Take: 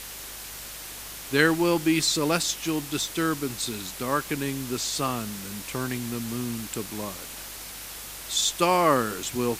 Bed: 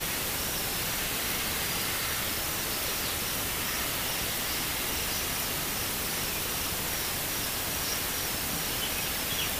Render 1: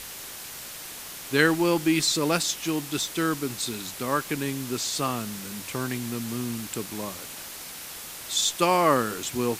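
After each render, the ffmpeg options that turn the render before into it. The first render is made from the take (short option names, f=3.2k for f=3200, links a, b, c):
-af "bandreject=f=50:t=h:w=4,bandreject=f=100:t=h:w=4"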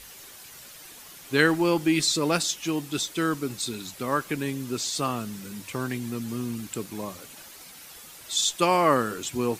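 -af "afftdn=nr=9:nf=-40"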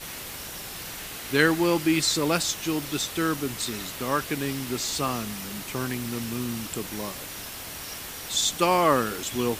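-filter_complex "[1:a]volume=-7dB[a];[0:a][a]amix=inputs=2:normalize=0"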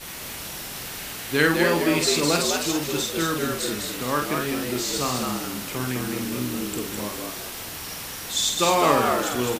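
-filter_complex "[0:a]asplit=2[a][b];[b]adelay=48,volume=-5dB[c];[a][c]amix=inputs=2:normalize=0,asplit=2[d][e];[e]asplit=4[f][g][h][i];[f]adelay=206,afreqshift=80,volume=-4dB[j];[g]adelay=412,afreqshift=160,volume=-13.6dB[k];[h]adelay=618,afreqshift=240,volume=-23.3dB[l];[i]adelay=824,afreqshift=320,volume=-32.9dB[m];[j][k][l][m]amix=inputs=4:normalize=0[n];[d][n]amix=inputs=2:normalize=0"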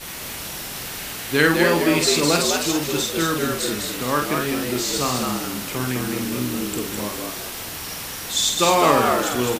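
-af "volume=3dB,alimiter=limit=-2dB:level=0:latency=1"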